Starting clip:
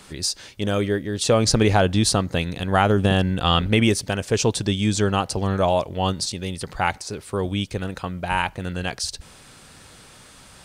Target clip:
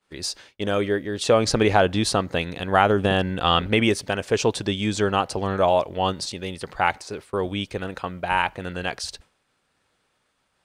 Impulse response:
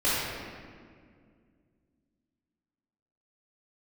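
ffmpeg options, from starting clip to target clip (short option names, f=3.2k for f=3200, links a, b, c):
-af "bass=f=250:g=-8,treble=f=4k:g=-8,agate=range=-33dB:threshold=-36dB:ratio=3:detection=peak,volume=1.5dB"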